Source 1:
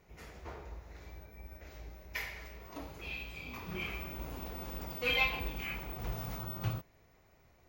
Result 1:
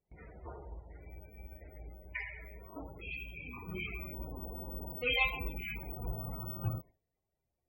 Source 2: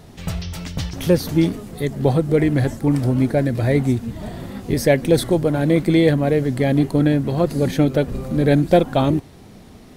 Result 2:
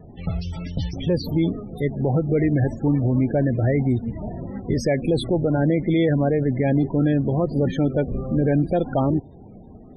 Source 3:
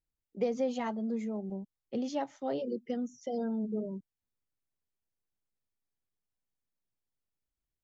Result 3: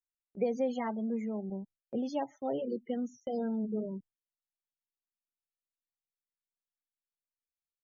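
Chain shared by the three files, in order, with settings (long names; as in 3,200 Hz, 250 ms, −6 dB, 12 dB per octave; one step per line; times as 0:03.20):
spectral peaks only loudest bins 32
brickwall limiter −11.5 dBFS
noise gate with hold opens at −45 dBFS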